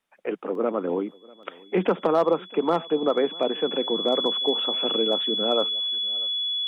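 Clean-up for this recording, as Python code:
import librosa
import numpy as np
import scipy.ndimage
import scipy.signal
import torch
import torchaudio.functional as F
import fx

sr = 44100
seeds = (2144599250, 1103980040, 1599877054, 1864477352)

y = fx.fix_declip(x, sr, threshold_db=-12.0)
y = fx.notch(y, sr, hz=3400.0, q=30.0)
y = fx.fix_interpolate(y, sr, at_s=(0.55, 1.43), length_ms=2.1)
y = fx.fix_echo_inverse(y, sr, delay_ms=643, level_db=-24.0)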